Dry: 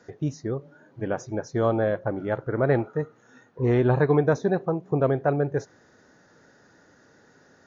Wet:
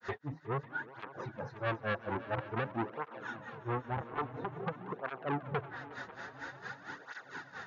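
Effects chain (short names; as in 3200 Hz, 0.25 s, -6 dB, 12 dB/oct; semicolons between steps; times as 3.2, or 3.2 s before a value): limiter -20.5 dBFS, peak gain reduction 11 dB; treble ducked by the level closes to 650 Hz, closed at -27.5 dBFS; compressor 6:1, threshold -31 dBFS, peak gain reduction 7 dB; grains 0.19 s, grains 4.4/s, spray 11 ms, pitch spread up and down by 0 st; soft clip -38.5 dBFS, distortion -9 dB; band shelf 1800 Hz +13.5 dB 2.7 oct; multi-head echo 0.182 s, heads all three, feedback 73%, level -20.5 dB; tape flanging out of phase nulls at 0.49 Hz, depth 7.2 ms; gain +8.5 dB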